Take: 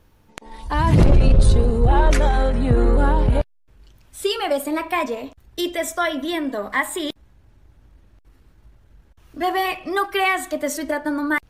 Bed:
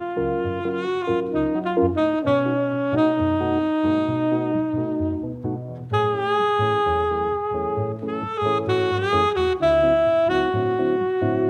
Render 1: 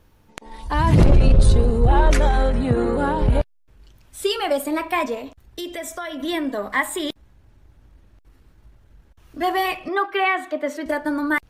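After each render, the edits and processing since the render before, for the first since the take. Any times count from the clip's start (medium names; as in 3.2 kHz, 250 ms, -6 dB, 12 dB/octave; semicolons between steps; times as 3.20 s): 2.61–3.22 s: high-pass 100 Hz; 5.18–6.20 s: compression 3:1, threshold -29 dBFS; 9.88–10.86 s: three-band isolator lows -21 dB, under 210 Hz, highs -17 dB, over 3.6 kHz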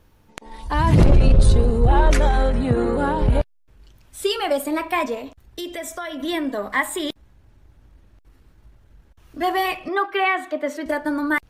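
no audible change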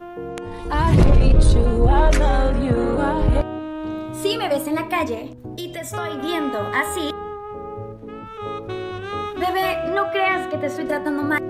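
add bed -8 dB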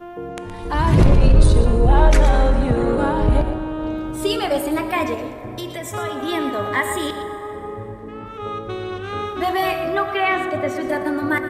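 delay 119 ms -11 dB; plate-style reverb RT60 4.5 s, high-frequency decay 0.45×, DRR 10.5 dB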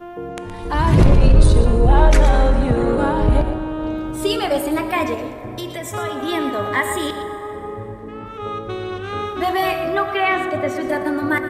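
trim +1 dB; peak limiter -2 dBFS, peak gain reduction 1 dB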